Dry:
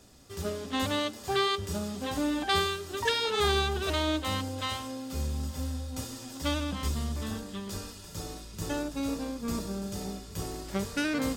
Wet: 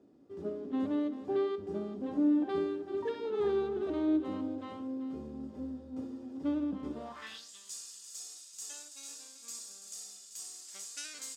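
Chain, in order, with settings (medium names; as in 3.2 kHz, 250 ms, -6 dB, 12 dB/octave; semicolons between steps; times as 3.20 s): bass shelf 88 Hz -11 dB; on a send: multi-tap echo 64/387 ms -15.5/-12 dB; on the sum: band-pass sweep 310 Hz -> 7.3 kHz, 6.90–7.51 s; trim +4 dB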